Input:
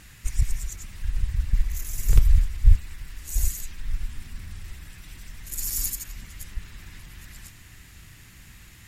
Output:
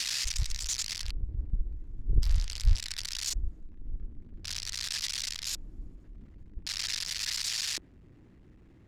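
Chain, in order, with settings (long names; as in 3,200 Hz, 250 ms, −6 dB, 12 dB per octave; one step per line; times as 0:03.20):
spike at every zero crossing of −11 dBFS
auto-filter low-pass square 0.45 Hz 320–4,900 Hz
level −9 dB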